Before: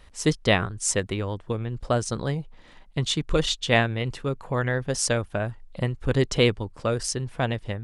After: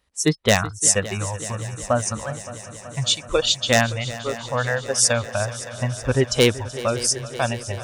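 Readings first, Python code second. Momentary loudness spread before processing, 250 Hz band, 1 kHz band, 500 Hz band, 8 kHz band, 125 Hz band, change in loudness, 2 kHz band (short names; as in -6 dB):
9 LU, +1.0 dB, +4.0 dB, +3.5 dB, +9.5 dB, +1.0 dB, +4.5 dB, +3.5 dB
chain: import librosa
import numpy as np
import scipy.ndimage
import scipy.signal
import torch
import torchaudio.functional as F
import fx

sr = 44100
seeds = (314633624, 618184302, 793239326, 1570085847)

y = fx.noise_reduce_blind(x, sr, reduce_db=20)
y = scipy.signal.sosfilt(scipy.signal.butter(2, 56.0, 'highpass', fs=sr, output='sos'), y)
y = 10.0 ** (-11.5 / 20.0) * (np.abs((y / 10.0 ** (-11.5 / 20.0) + 3.0) % 4.0 - 2.0) - 1.0)
y = fx.bass_treble(y, sr, bass_db=-1, treble_db=5)
y = fx.echo_heads(y, sr, ms=189, heads='second and third', feedback_pct=74, wet_db=-17)
y = y * 10.0 ** (4.5 / 20.0)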